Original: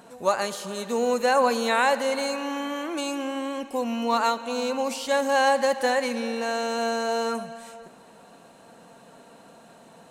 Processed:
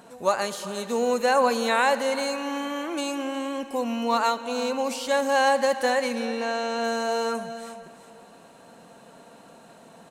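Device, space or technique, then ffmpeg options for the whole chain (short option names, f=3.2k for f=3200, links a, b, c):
ducked delay: -filter_complex "[0:a]asplit=3[a][b][c];[b]adelay=360,volume=-7.5dB[d];[c]apad=whole_len=461651[e];[d][e]sidechaincompress=threshold=-33dB:ratio=3:attack=16:release=1400[f];[a][f]amix=inputs=2:normalize=0,asettb=1/sr,asplit=3[g][h][i];[g]atrim=end=6.254[j];[h]atrim=start=6.25:end=6.84,asetpts=PTS-STARTPTS,afade=t=in:d=0.004:c=qsin,afade=t=out:st=0.586:d=0.004:c=qsin,acrossover=split=6400[k][l];[l]acompressor=threshold=-56dB:ratio=4:attack=1:release=60[m];[k][m]amix=inputs=2:normalize=0[n];[i]atrim=start=6.836[o];[j][n]acrossfade=d=0.004:c1=hsin:c2=qsin[p];[p][o]acrossfade=d=0.004:c1=qsin:c2=hsin"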